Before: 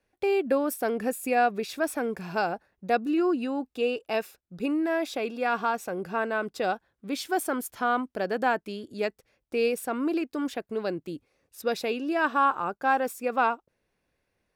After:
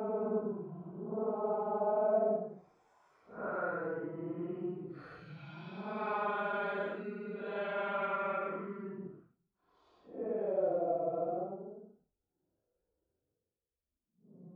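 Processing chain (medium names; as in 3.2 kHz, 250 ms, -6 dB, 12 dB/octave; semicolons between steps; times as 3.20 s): Doppler pass-by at 3.84 s, 32 m/s, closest 8.1 m; LFO low-pass sine 0.71 Hz 400–3800 Hz; Paulstretch 8.6×, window 0.05 s, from 5.24 s; trim +8.5 dB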